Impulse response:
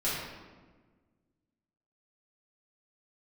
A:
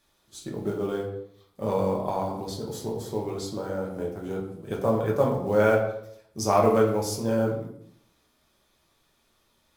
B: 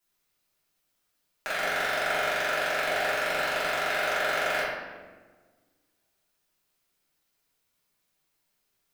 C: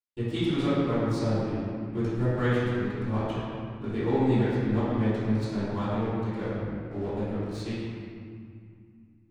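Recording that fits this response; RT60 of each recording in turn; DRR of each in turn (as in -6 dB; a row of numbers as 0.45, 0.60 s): B; 0.70, 1.4, 2.2 s; -2.0, -11.0, -13.5 dB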